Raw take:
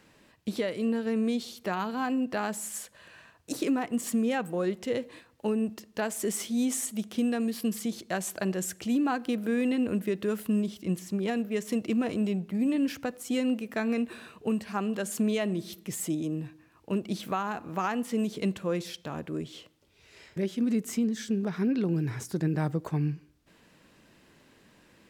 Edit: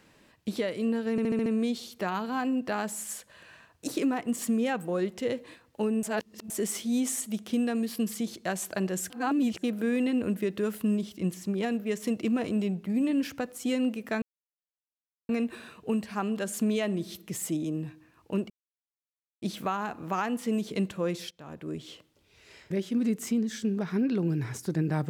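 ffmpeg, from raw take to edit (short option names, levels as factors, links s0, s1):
-filter_complex "[0:a]asplit=13[s0][s1][s2][s3][s4][s5][s6][s7][s8][s9][s10][s11][s12];[s0]atrim=end=1.182[s13];[s1]atrim=start=1.108:end=1.182[s14];[s2]atrim=start=1.108:end=1.182[s15];[s3]atrim=start=1.108:end=1.182[s16];[s4]atrim=start=1.108:end=1.182[s17];[s5]atrim=start=1.108:end=5.682[s18];[s6]atrim=start=5.678:end=6.152,asetpts=PTS-STARTPTS,areverse[s19];[s7]atrim=start=6.148:end=8.752[s20];[s8]atrim=start=8.748:end=9.282,asetpts=PTS-STARTPTS,areverse[s21];[s9]atrim=start=9.278:end=13.87,asetpts=PTS-STARTPTS,afade=t=out:st=4.588:d=0.004:c=hsin,apad=pad_dur=1.07[s22];[s10]atrim=start=13.87:end=17.08,asetpts=PTS-STARTPTS,afade=t=in:d=0.004:c=hsin,afade=t=out:st=3.206:d=0.004:c=hsin,apad=pad_dur=0.92[s23];[s11]atrim=start=17.08:end=18.97,asetpts=PTS-STARTPTS,afade=t=in:d=0.004:c=hsin,afade=t=out:st=1.886:d=0.004:c=hsin:silence=0.141254[s24];[s12]atrim=start=18.97,asetpts=PTS-STARTPTS,afade=t=in:d=0.53:silence=0.141254[s25];[s13][s14]acrossfade=d=0.004:c1=hsin:c2=hsin[s26];[s26][s15]acrossfade=d=0.004:c1=hsin:c2=hsin[s27];[s27][s16]acrossfade=d=0.004:c1=hsin:c2=hsin[s28];[s28][s17]acrossfade=d=0.004:c1=hsin:c2=hsin[s29];[s29][s18]acrossfade=d=0.004:c1=hsin:c2=hsin[s30];[s30][s19]acrossfade=d=0.004:c1=hsin:c2=hsin[s31];[s31][s20]acrossfade=d=0.004:c1=hsin:c2=hsin[s32];[s32][s21]acrossfade=d=0.004:c1=hsin:c2=hsin[s33];[s22][s23][s24][s25]concat=n=4:v=0:a=1[s34];[s33][s34]acrossfade=d=0.004:c1=hsin:c2=hsin"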